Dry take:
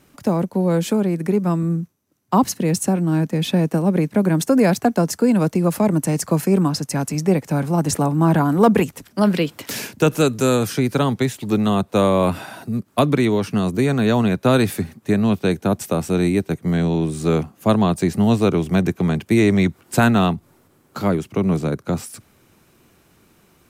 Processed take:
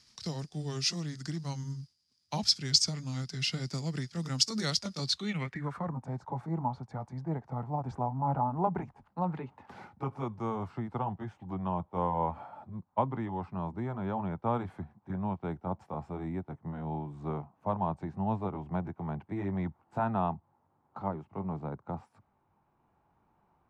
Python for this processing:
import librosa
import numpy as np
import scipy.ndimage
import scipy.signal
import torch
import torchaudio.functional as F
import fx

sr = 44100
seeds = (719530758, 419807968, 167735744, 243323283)

y = fx.pitch_glide(x, sr, semitones=-4.0, runs='ending unshifted')
y = fx.high_shelf(y, sr, hz=7700.0, db=8.5)
y = fx.filter_sweep_lowpass(y, sr, from_hz=5000.0, to_hz=860.0, start_s=4.99, end_s=5.99, q=4.7)
y = fx.tone_stack(y, sr, knobs='5-5-5')